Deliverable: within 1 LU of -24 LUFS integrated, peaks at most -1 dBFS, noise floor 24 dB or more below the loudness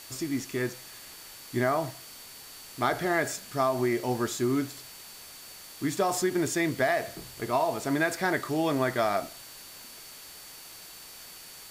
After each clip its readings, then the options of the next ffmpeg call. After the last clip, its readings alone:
steady tone 4500 Hz; tone level -52 dBFS; noise floor -47 dBFS; noise floor target -53 dBFS; loudness -28.5 LUFS; peak -13.0 dBFS; loudness target -24.0 LUFS
-> -af "bandreject=f=4.5k:w=30"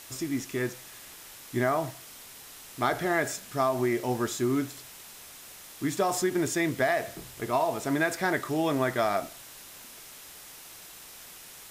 steady tone none; noise floor -48 dBFS; noise floor target -53 dBFS
-> -af "afftdn=nr=6:nf=-48"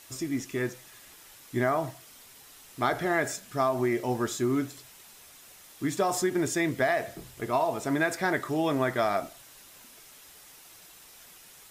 noise floor -52 dBFS; noise floor target -53 dBFS
-> -af "afftdn=nr=6:nf=-52"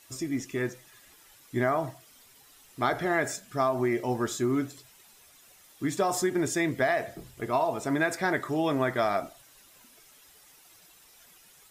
noise floor -57 dBFS; loudness -29.0 LUFS; peak -13.0 dBFS; loudness target -24.0 LUFS
-> -af "volume=5dB"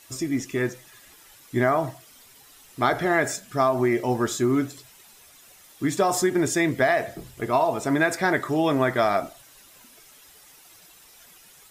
loudness -24.0 LUFS; peak -8.0 dBFS; noise floor -52 dBFS

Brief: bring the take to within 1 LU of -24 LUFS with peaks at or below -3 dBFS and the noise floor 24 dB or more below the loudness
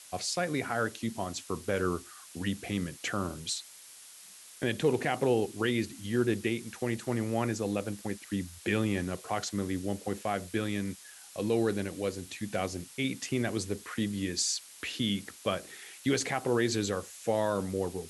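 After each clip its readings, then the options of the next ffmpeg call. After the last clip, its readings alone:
noise floor -52 dBFS; noise floor target -57 dBFS; loudness -32.5 LUFS; peak -14.5 dBFS; loudness target -24.0 LUFS
-> -af "afftdn=nr=6:nf=-52"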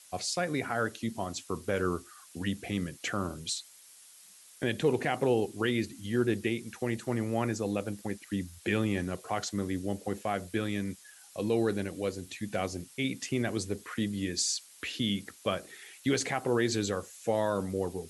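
noise floor -55 dBFS; noise floor target -57 dBFS
-> -af "afftdn=nr=6:nf=-55"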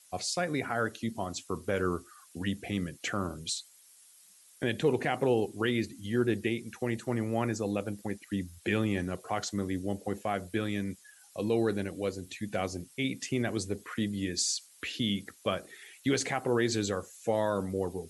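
noise floor -59 dBFS; loudness -32.5 LUFS; peak -15.0 dBFS; loudness target -24.0 LUFS
-> -af "volume=8.5dB"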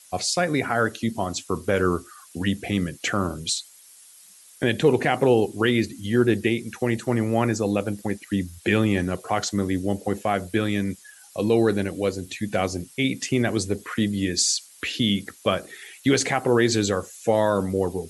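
loudness -24.0 LUFS; peak -6.5 dBFS; noise floor -50 dBFS

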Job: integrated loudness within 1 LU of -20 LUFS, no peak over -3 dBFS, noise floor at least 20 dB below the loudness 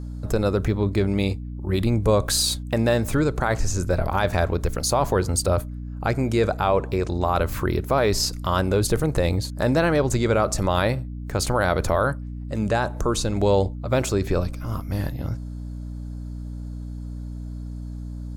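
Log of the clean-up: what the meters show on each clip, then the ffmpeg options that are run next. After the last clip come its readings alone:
hum 60 Hz; harmonics up to 300 Hz; hum level -30 dBFS; loudness -23.0 LUFS; peak -9.0 dBFS; loudness target -20.0 LUFS
-> -af "bandreject=f=60:t=h:w=6,bandreject=f=120:t=h:w=6,bandreject=f=180:t=h:w=6,bandreject=f=240:t=h:w=6,bandreject=f=300:t=h:w=6"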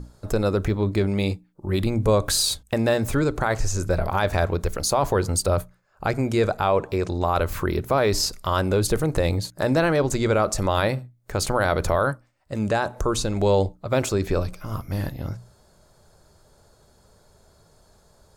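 hum none; loudness -23.5 LUFS; peak -9.0 dBFS; loudness target -20.0 LUFS
-> -af "volume=3.5dB"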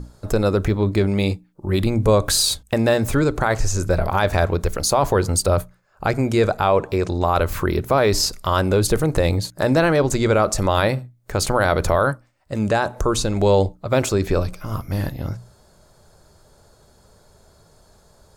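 loudness -20.0 LUFS; peak -5.5 dBFS; noise floor -55 dBFS

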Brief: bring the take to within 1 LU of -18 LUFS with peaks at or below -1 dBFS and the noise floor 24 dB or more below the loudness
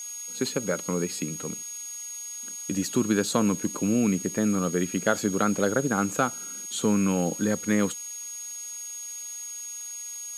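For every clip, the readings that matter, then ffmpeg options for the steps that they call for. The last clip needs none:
steady tone 6600 Hz; tone level -35 dBFS; noise floor -38 dBFS; noise floor target -52 dBFS; loudness -27.5 LUFS; peak -6.5 dBFS; loudness target -18.0 LUFS
-> -af "bandreject=f=6.6k:w=30"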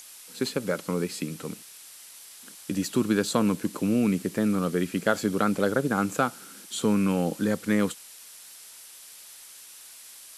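steady tone none; noise floor -47 dBFS; noise floor target -51 dBFS
-> -af "afftdn=nr=6:nf=-47"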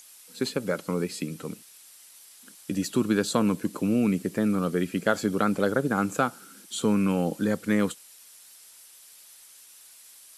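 noise floor -52 dBFS; loudness -27.0 LUFS; peak -6.5 dBFS; loudness target -18.0 LUFS
-> -af "volume=9dB,alimiter=limit=-1dB:level=0:latency=1"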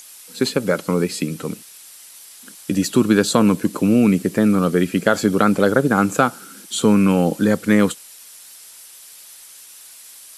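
loudness -18.0 LUFS; peak -1.0 dBFS; noise floor -43 dBFS

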